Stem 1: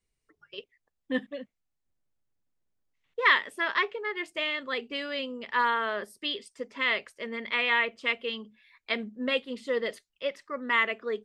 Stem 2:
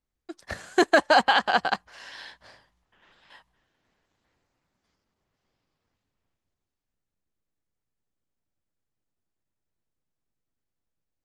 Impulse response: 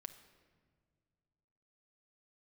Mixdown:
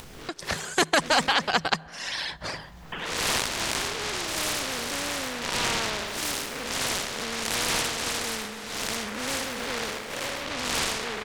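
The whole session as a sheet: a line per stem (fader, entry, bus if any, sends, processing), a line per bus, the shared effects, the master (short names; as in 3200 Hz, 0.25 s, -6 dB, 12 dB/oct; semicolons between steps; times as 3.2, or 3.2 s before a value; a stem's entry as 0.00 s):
-1.0 dB, 0.00 s, no send, echo send -18 dB, time blur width 0.195 s; noise-modulated delay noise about 1300 Hz, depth 0.17 ms
-2.5 dB, 0.00 s, send -18.5 dB, no echo send, AGC gain up to 11 dB; reverb removal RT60 1.5 s; bell 160 Hz +14 dB 0.24 oct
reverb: on, pre-delay 6 ms
echo: feedback echo 0.141 s, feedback 51%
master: high shelf 9000 Hz -6.5 dB; upward compressor, threshold -32 dBFS; spectral compressor 2:1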